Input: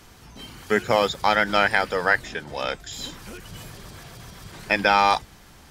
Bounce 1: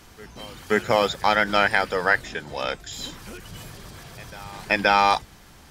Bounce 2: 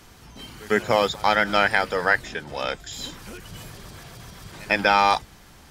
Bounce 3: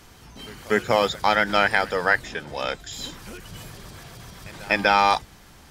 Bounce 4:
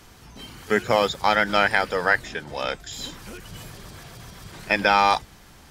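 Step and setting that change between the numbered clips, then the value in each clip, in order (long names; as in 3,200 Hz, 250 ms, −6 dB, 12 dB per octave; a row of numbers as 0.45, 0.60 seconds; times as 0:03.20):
backwards echo, delay time: 526, 103, 245, 34 milliseconds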